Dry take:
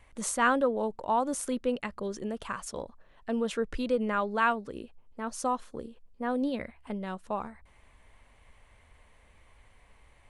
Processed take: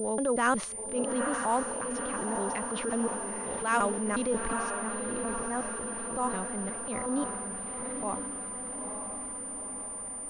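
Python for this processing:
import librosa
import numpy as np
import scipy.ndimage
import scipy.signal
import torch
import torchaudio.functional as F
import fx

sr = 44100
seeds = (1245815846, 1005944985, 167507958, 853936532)

p1 = fx.block_reorder(x, sr, ms=181.0, group=5)
p2 = p1 + fx.echo_diffused(p1, sr, ms=910, feedback_pct=60, wet_db=-7.0, dry=0)
p3 = fx.transient(p2, sr, attack_db=-7, sustain_db=3)
y = fx.pwm(p3, sr, carrier_hz=9200.0)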